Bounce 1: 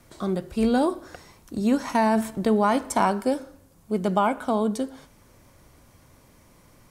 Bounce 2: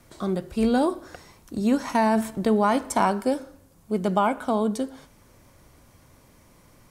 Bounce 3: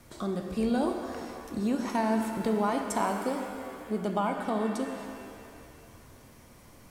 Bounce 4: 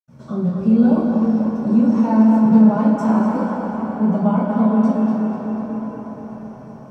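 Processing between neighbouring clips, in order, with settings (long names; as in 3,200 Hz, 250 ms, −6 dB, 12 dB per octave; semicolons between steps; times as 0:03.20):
no processing that can be heard
downward compressor 1.5 to 1, threshold −40 dBFS, peak gain reduction 8.5 dB; reverb with rising layers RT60 2.3 s, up +7 semitones, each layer −8 dB, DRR 4.5 dB
tape delay 243 ms, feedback 83%, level −4 dB, low-pass 3,800 Hz; convolution reverb RT60 0.45 s, pre-delay 76 ms; level −2 dB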